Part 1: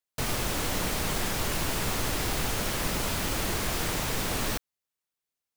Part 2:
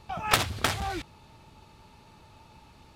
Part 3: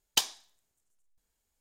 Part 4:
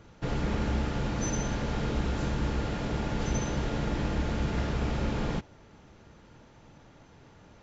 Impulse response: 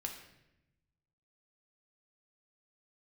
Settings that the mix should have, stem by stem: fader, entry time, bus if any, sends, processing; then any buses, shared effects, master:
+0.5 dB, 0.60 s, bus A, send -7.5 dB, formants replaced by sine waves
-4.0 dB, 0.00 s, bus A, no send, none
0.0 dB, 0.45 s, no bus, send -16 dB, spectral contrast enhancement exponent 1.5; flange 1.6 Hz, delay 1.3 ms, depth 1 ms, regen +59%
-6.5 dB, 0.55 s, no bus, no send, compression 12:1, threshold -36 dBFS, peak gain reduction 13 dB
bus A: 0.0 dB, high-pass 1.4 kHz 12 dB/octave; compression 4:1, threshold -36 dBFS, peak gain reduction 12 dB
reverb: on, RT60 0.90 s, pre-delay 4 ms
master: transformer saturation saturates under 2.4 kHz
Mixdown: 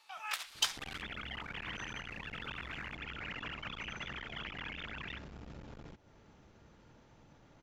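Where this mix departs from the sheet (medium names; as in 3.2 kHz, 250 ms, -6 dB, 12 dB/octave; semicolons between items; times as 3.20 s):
stem 1 +0.5 dB -> -10.0 dB; reverb return -7.0 dB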